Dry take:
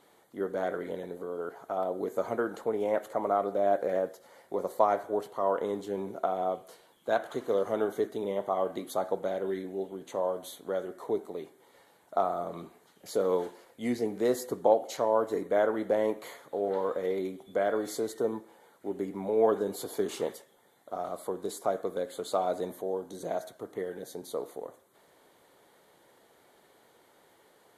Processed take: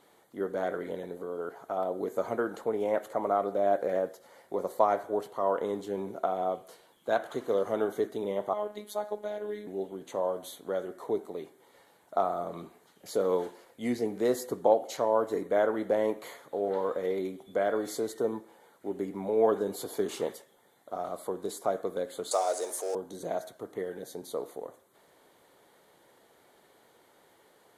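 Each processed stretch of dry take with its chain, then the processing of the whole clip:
0:08.53–0:09.67: low-shelf EQ 220 Hz −8.5 dB + phases set to zero 209 Hz + notch filter 1,300 Hz, Q 11
0:22.31–0:22.95: mu-law and A-law mismatch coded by mu + high-pass filter 400 Hz 24 dB per octave + flat-topped bell 7,000 Hz +15.5 dB 1.3 octaves
whole clip: no processing

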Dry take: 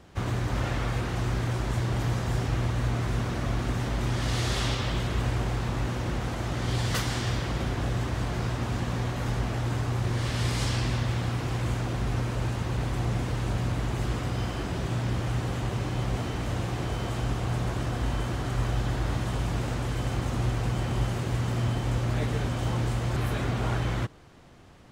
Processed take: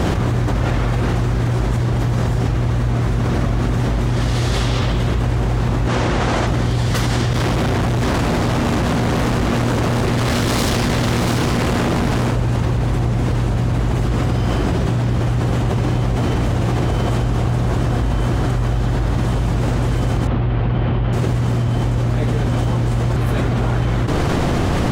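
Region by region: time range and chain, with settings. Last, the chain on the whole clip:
0:05.88–0:06.47: low-pass filter 8,100 Hz + low-shelf EQ 340 Hz −9.5 dB
0:07.33–0:12.32: high-pass filter 92 Hz 6 dB per octave + tube saturation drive 38 dB, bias 0.55 + single-tap delay 687 ms −4.5 dB
0:20.27–0:21.13: low-pass filter 3,500 Hz 24 dB per octave + highs frequency-modulated by the lows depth 0.11 ms
whole clip: tilt shelving filter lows +3 dB; envelope flattener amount 100%; level +2.5 dB

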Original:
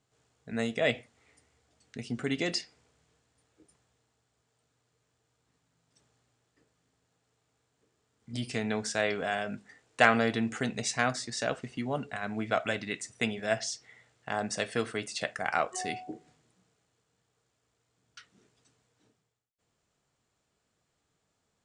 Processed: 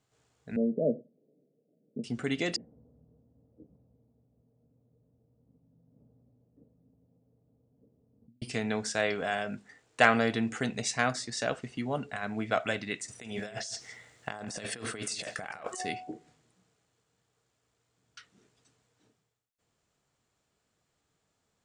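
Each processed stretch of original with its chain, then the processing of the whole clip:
0:00.56–0:02.04: Chebyshev band-pass filter 150–600 Hz, order 4 + low-shelf EQ 480 Hz +6.5 dB
0:02.56–0:08.42: transistor ladder low-pass 580 Hz, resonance 55% + low shelf with overshoot 300 Hz +6.5 dB, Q 3 + compressor whose output falls as the input rises −57 dBFS
0:13.08–0:15.80: high-shelf EQ 7,200 Hz +7 dB + compressor whose output falls as the input rises −40 dBFS + single-tap delay 163 ms −15.5 dB
whole clip: no processing

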